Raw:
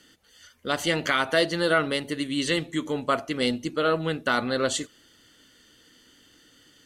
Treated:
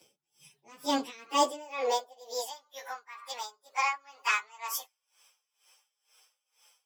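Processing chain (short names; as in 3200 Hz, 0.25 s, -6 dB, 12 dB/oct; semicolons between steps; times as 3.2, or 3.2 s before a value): pitch shift by moving bins +9.5 st; high-pass sweep 160 Hz -> 1200 Hz, 0.73–2.7; dB-linear tremolo 2.1 Hz, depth 24 dB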